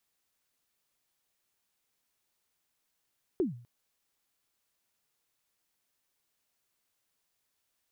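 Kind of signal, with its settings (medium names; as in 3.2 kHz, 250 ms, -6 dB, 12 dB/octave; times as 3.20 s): kick drum length 0.25 s, from 410 Hz, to 120 Hz, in 140 ms, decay 0.47 s, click off, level -22 dB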